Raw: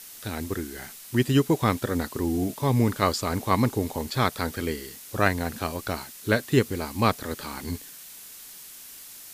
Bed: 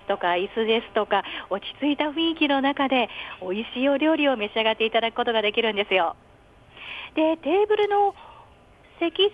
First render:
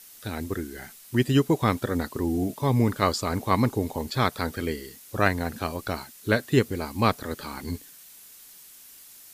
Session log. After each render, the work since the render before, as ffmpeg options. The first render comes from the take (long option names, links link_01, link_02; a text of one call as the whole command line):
ffmpeg -i in.wav -af "afftdn=noise_reduction=6:noise_floor=-44" out.wav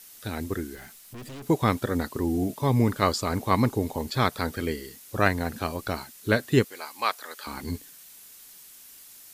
ffmpeg -i in.wav -filter_complex "[0:a]asettb=1/sr,asplit=3[link_01][link_02][link_03];[link_01]atrim=end=0.754[link_04];[link_02]atrim=start=0.75:end=1.47,asetpts=PTS-STARTPTS,afade=type=in:duration=0.004:curve=qsin,afade=type=out:start_time=0.716:duration=0.004:curve=qsin,aeval=exprs='(tanh(89.1*val(0)+0.25)-tanh(0.25))/89.1':channel_layout=same[link_05];[link_03]atrim=start=1.466[link_06];[link_04][link_05]acrossfade=duration=0.004:curve1=hsin:curve2=qsin[link_07];[link_07][link_06]acrossfade=duration=0.004:curve1=qsin:curve2=hsin,asettb=1/sr,asplit=3[link_08][link_09][link_10];[link_08]atrim=end=6.644[link_11];[link_09]atrim=start=6.64:end=7.47,asetpts=PTS-STARTPTS,afade=type=in:duration=0.004:curve=qsin,afade=type=out:start_time=0.826:duration=0.004:curve=qsin,highpass=880[link_12];[link_10]atrim=start=7.466[link_13];[link_11][link_12]acrossfade=duration=0.004:curve1=hsin:curve2=qsin[link_14];[link_14][link_13]acrossfade=duration=0.004:curve1=qsin:curve2=hsin" out.wav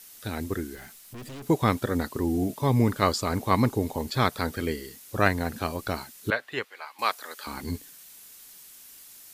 ffmpeg -i in.wav -filter_complex "[0:a]asettb=1/sr,asplit=3[link_01][link_02][link_03];[link_01]atrim=end=6.304[link_04];[link_02]atrim=start=6.3:end=6.99,asetpts=PTS-STARTPTS,afade=type=in:duration=0.004:curve=qsin,afade=type=out:start_time=0.686:duration=0.004:curve=qsin,acrossover=split=580 3600:gain=0.0794 1 0.141[link_05][link_06][link_07];[link_05][link_06][link_07]amix=inputs=3:normalize=0[link_08];[link_03]atrim=start=6.986[link_09];[link_04][link_08]acrossfade=duration=0.004:curve1=hsin:curve2=qsin[link_10];[link_10][link_09]acrossfade=duration=0.004:curve1=qsin:curve2=hsin" out.wav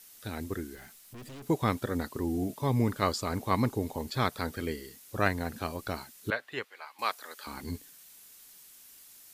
ffmpeg -i in.wav -af "volume=-5dB" out.wav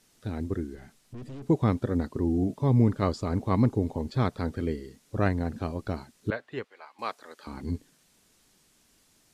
ffmpeg -i in.wav -af "lowpass=8100,tiltshelf=frequency=720:gain=7" out.wav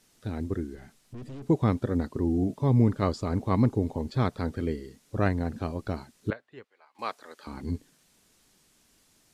ffmpeg -i in.wav -filter_complex "[0:a]asplit=3[link_01][link_02][link_03];[link_01]atrim=end=6.332[link_04];[link_02]atrim=start=6.328:end=6.952,asetpts=PTS-STARTPTS,volume=-11.5dB[link_05];[link_03]atrim=start=6.948[link_06];[link_04][link_05]acrossfade=duration=0.004:curve1=hsin:curve2=hsin[link_07];[link_07][link_06]acrossfade=duration=0.004:curve1=hsin:curve2=hsin" out.wav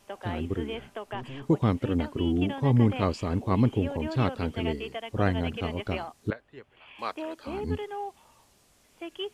ffmpeg -i in.wav -i bed.wav -filter_complex "[1:a]volume=-15dB[link_01];[0:a][link_01]amix=inputs=2:normalize=0" out.wav